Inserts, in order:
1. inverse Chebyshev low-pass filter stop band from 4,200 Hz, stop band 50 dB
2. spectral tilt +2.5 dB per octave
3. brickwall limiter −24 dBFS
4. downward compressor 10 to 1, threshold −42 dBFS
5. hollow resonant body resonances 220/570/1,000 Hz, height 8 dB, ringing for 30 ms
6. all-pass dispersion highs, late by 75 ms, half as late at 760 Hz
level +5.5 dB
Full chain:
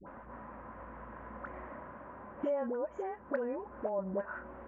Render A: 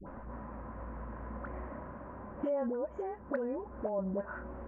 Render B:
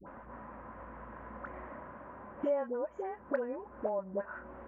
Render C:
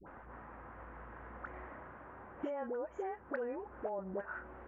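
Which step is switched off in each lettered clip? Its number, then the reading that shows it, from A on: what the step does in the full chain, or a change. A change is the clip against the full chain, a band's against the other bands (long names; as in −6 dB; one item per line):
2, 125 Hz band +6.5 dB
3, average gain reduction 1.5 dB
5, 2 kHz band +3.5 dB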